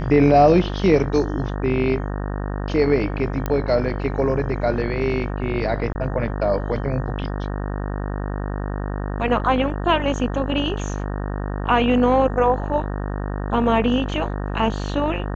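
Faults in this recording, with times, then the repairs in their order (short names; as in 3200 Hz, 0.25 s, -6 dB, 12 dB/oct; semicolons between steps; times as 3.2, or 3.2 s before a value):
buzz 50 Hz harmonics 37 -26 dBFS
3.46 pop -11 dBFS
5.93–5.95 gap 20 ms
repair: de-click; de-hum 50 Hz, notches 37; interpolate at 5.93, 20 ms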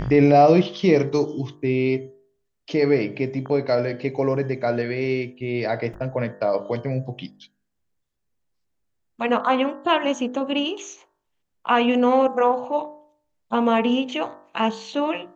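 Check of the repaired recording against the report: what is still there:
none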